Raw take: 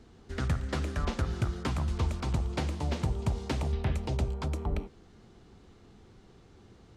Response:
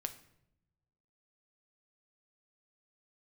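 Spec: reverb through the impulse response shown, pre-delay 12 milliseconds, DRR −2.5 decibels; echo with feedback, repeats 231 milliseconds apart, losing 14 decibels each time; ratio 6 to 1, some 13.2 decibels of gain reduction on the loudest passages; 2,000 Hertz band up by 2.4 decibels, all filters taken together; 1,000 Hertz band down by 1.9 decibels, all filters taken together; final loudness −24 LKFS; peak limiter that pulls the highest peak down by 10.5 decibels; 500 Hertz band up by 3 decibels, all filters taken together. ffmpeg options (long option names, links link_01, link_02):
-filter_complex "[0:a]equalizer=frequency=500:width_type=o:gain=5,equalizer=frequency=1000:width_type=o:gain=-5.5,equalizer=frequency=2000:width_type=o:gain=4.5,acompressor=threshold=-39dB:ratio=6,alimiter=level_in=13dB:limit=-24dB:level=0:latency=1,volume=-13dB,aecho=1:1:231|462:0.2|0.0399,asplit=2[link_01][link_02];[1:a]atrim=start_sample=2205,adelay=12[link_03];[link_02][link_03]afir=irnorm=-1:irlink=0,volume=3.5dB[link_04];[link_01][link_04]amix=inputs=2:normalize=0,volume=18dB"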